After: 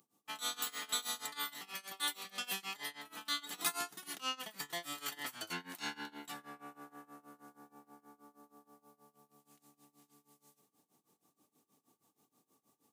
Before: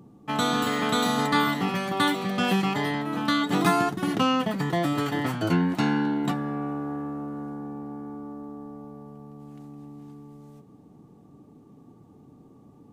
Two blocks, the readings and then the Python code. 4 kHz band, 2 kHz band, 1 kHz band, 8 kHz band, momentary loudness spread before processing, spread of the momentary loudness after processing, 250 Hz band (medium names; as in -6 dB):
-8.0 dB, -13.5 dB, -18.5 dB, -2.0 dB, 21 LU, 18 LU, -29.0 dB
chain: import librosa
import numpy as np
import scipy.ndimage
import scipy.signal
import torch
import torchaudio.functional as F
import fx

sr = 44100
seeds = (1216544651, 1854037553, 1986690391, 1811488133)

y = np.diff(x, prepend=0.0)
y = fx.rider(y, sr, range_db=4, speed_s=2.0)
y = y * (1.0 - 0.92 / 2.0 + 0.92 / 2.0 * np.cos(2.0 * np.pi * 6.3 * (np.arange(len(y)) / sr)))
y = F.gain(torch.from_numpy(y), 1.5).numpy()